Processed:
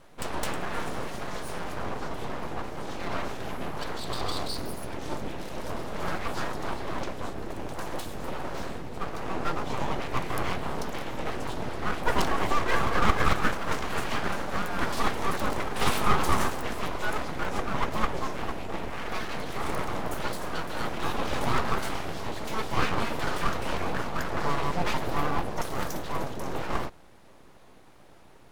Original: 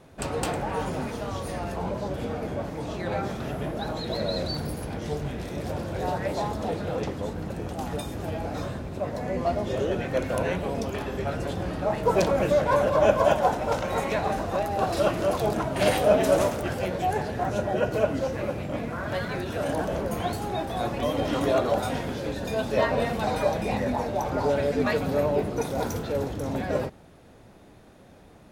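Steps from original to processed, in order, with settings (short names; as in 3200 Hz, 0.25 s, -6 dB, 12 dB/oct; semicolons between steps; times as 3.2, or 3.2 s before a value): full-wave rectifier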